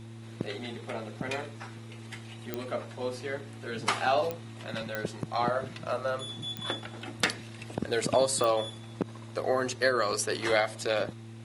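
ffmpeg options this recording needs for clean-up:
-af "adeclick=t=4,bandreject=f=113:t=h:w=4,bandreject=f=226:t=h:w=4,bandreject=f=339:t=h:w=4"

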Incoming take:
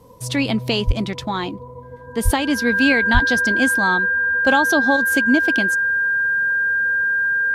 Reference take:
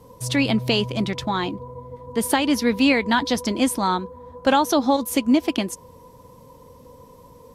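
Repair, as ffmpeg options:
-filter_complex "[0:a]bandreject=f=1600:w=30,asplit=3[s0][s1][s2];[s0]afade=t=out:st=0.86:d=0.02[s3];[s1]highpass=f=140:w=0.5412,highpass=f=140:w=1.3066,afade=t=in:st=0.86:d=0.02,afade=t=out:st=0.98:d=0.02[s4];[s2]afade=t=in:st=0.98:d=0.02[s5];[s3][s4][s5]amix=inputs=3:normalize=0,asplit=3[s6][s7][s8];[s6]afade=t=out:st=2.24:d=0.02[s9];[s7]highpass=f=140:w=0.5412,highpass=f=140:w=1.3066,afade=t=in:st=2.24:d=0.02,afade=t=out:st=2.36:d=0.02[s10];[s8]afade=t=in:st=2.36:d=0.02[s11];[s9][s10][s11]amix=inputs=3:normalize=0,asplit=3[s12][s13][s14];[s12]afade=t=out:st=3.13:d=0.02[s15];[s13]highpass=f=140:w=0.5412,highpass=f=140:w=1.3066,afade=t=in:st=3.13:d=0.02,afade=t=out:st=3.25:d=0.02[s16];[s14]afade=t=in:st=3.25:d=0.02[s17];[s15][s16][s17]amix=inputs=3:normalize=0"

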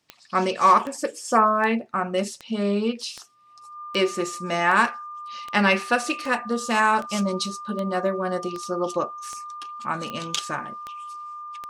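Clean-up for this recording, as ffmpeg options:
-af "adeclick=t=4,bandreject=f=1200:w=30"

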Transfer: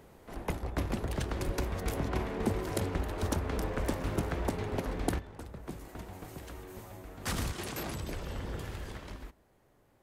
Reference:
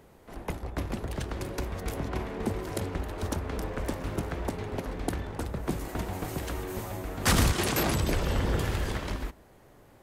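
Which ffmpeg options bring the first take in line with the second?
-filter_complex "[0:a]asplit=3[s0][s1][s2];[s0]afade=t=out:st=1.45:d=0.02[s3];[s1]highpass=f=140:w=0.5412,highpass=f=140:w=1.3066,afade=t=in:st=1.45:d=0.02,afade=t=out:st=1.57:d=0.02[s4];[s2]afade=t=in:st=1.57:d=0.02[s5];[s3][s4][s5]amix=inputs=3:normalize=0,asetnsamples=n=441:p=0,asendcmd='5.19 volume volume 11dB',volume=1"

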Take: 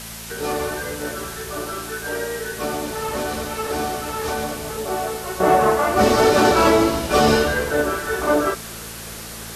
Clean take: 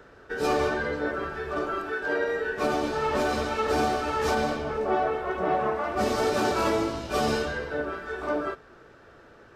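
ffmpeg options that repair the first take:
-af "bandreject=f=56:t=h:w=4,bandreject=f=112:t=h:w=4,bandreject=f=168:t=h:w=4,bandreject=f=224:t=h:w=4,afwtdn=0.02,asetnsamples=n=441:p=0,asendcmd='5.4 volume volume -10dB',volume=1"

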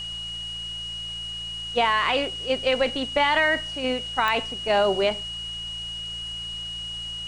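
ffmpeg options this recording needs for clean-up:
-af "adeclick=t=4,bandreject=f=56.4:t=h:w=4,bandreject=f=112.8:t=h:w=4,bandreject=f=169.2:t=h:w=4,bandreject=f=2900:w=30,afwtdn=0.005"

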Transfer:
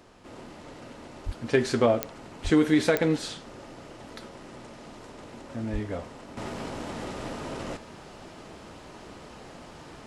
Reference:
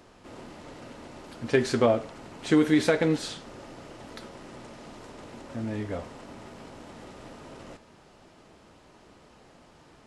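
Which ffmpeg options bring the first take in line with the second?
-filter_complex "[0:a]adeclick=t=4,asplit=3[s0][s1][s2];[s0]afade=t=out:st=1.25:d=0.02[s3];[s1]highpass=f=140:w=0.5412,highpass=f=140:w=1.3066,afade=t=in:st=1.25:d=0.02,afade=t=out:st=1.37:d=0.02[s4];[s2]afade=t=in:st=1.37:d=0.02[s5];[s3][s4][s5]amix=inputs=3:normalize=0,asplit=3[s6][s7][s8];[s6]afade=t=out:st=2.43:d=0.02[s9];[s7]highpass=f=140:w=0.5412,highpass=f=140:w=1.3066,afade=t=in:st=2.43:d=0.02,afade=t=out:st=2.55:d=0.02[s10];[s8]afade=t=in:st=2.55:d=0.02[s11];[s9][s10][s11]amix=inputs=3:normalize=0,asplit=3[s12][s13][s14];[s12]afade=t=out:st=5.72:d=0.02[s15];[s13]highpass=f=140:w=0.5412,highpass=f=140:w=1.3066,afade=t=in:st=5.72:d=0.02,afade=t=out:st=5.84:d=0.02[s16];[s14]afade=t=in:st=5.84:d=0.02[s17];[s15][s16][s17]amix=inputs=3:normalize=0,asetnsamples=n=441:p=0,asendcmd='6.37 volume volume -9.5dB',volume=1"

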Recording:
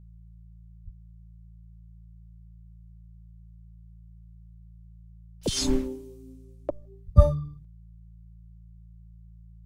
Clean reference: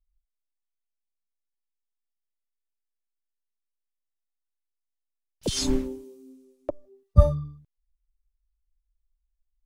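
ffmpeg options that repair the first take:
-filter_complex "[0:a]bandreject=f=55.9:t=h:w=4,bandreject=f=111.8:t=h:w=4,bandreject=f=167.7:t=h:w=4,asplit=3[s0][s1][s2];[s0]afade=t=out:st=0.84:d=0.02[s3];[s1]highpass=f=140:w=0.5412,highpass=f=140:w=1.3066,afade=t=in:st=0.84:d=0.02,afade=t=out:st=0.96:d=0.02[s4];[s2]afade=t=in:st=0.96:d=0.02[s5];[s3][s4][s5]amix=inputs=3:normalize=0,asplit=3[s6][s7][s8];[s6]afade=t=out:st=7.05:d=0.02[s9];[s7]highpass=f=140:w=0.5412,highpass=f=140:w=1.3066,afade=t=in:st=7.05:d=0.02,afade=t=out:st=7.17:d=0.02[s10];[s8]afade=t=in:st=7.17:d=0.02[s11];[s9][s10][s11]amix=inputs=3:normalize=0"

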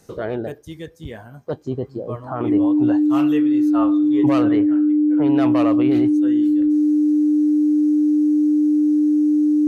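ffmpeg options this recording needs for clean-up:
-af "bandreject=f=300:w=30"

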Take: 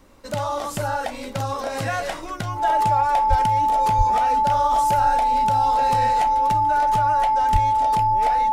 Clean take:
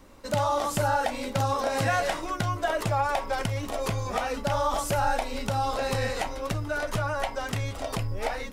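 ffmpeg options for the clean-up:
-filter_complex "[0:a]bandreject=f=870:w=30,asplit=3[s0][s1][s2];[s0]afade=t=out:st=3.29:d=0.02[s3];[s1]highpass=f=140:w=0.5412,highpass=f=140:w=1.3066,afade=t=in:st=3.29:d=0.02,afade=t=out:st=3.41:d=0.02[s4];[s2]afade=t=in:st=3.41:d=0.02[s5];[s3][s4][s5]amix=inputs=3:normalize=0,asplit=3[s6][s7][s8];[s6]afade=t=out:st=3.97:d=0.02[s9];[s7]highpass=f=140:w=0.5412,highpass=f=140:w=1.3066,afade=t=in:st=3.97:d=0.02,afade=t=out:st=4.09:d=0.02[s10];[s8]afade=t=in:st=4.09:d=0.02[s11];[s9][s10][s11]amix=inputs=3:normalize=0,asplit=3[s12][s13][s14];[s12]afade=t=out:st=7.52:d=0.02[s15];[s13]highpass=f=140:w=0.5412,highpass=f=140:w=1.3066,afade=t=in:st=7.52:d=0.02,afade=t=out:st=7.64:d=0.02[s16];[s14]afade=t=in:st=7.64:d=0.02[s17];[s15][s16][s17]amix=inputs=3:normalize=0"

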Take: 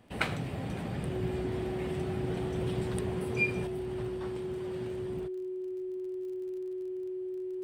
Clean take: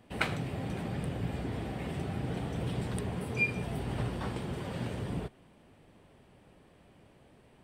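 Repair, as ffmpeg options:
-af "adeclick=t=4,bandreject=f=370:w=30,asetnsamples=n=441:p=0,asendcmd='3.67 volume volume 6.5dB',volume=1"

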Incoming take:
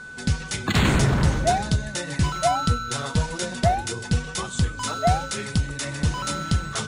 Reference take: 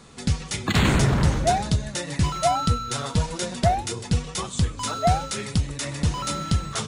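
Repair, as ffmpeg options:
-af "bandreject=f=1500:w=30"

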